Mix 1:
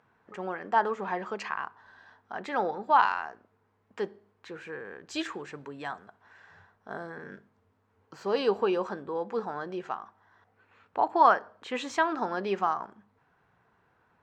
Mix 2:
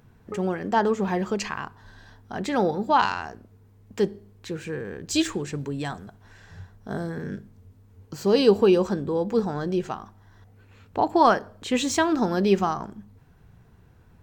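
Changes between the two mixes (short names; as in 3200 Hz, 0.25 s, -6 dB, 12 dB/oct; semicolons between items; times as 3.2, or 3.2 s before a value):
background +9.5 dB; master: remove band-pass 1200 Hz, Q 1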